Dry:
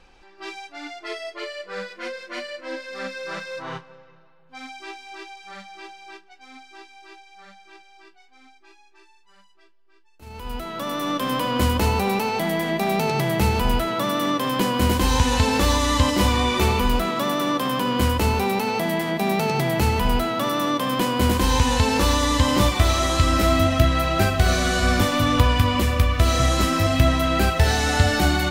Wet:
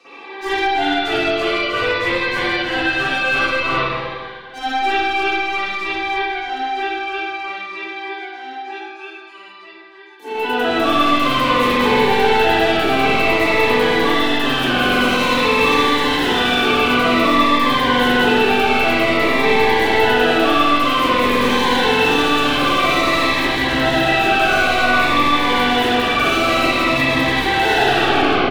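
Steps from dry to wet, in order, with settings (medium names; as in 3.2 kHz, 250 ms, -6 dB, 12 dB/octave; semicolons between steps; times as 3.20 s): tape stop on the ending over 0.79 s; steep high-pass 170 Hz 72 dB/octave; tone controls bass -10 dB, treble -3 dB; comb 2.6 ms, depth 71%; peak limiter -16 dBFS, peak gain reduction 7.5 dB; hard clipper -34.5 dBFS, distortion -4 dB; echo whose repeats swap between lows and highs 133 ms, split 870 Hz, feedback 58%, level -14 dB; reverberation RT60 1.9 s, pre-delay 45 ms, DRR -18 dB; Shepard-style phaser falling 0.52 Hz; trim +5 dB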